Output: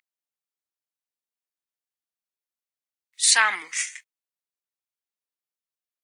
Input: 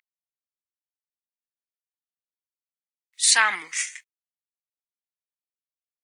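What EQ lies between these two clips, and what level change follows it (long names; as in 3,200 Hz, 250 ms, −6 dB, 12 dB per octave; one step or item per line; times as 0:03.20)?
high-pass filter 230 Hz
0.0 dB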